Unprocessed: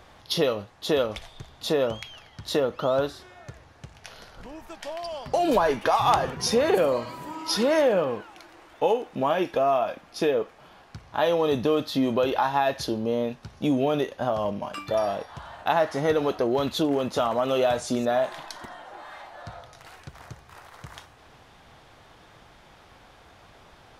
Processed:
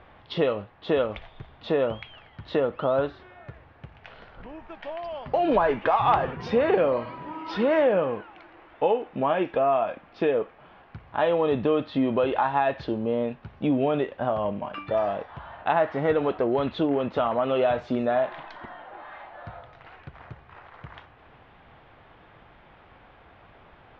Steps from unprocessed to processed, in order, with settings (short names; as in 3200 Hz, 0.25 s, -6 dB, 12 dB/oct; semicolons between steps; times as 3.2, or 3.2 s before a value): LPF 2900 Hz 24 dB/oct